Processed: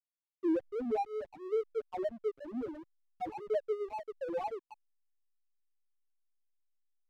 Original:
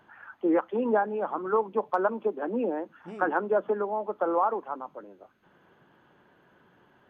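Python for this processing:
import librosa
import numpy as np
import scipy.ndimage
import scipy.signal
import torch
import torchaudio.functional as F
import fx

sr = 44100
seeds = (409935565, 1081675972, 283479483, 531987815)

y = fx.spec_topn(x, sr, count=1)
y = fx.backlash(y, sr, play_db=-36.0)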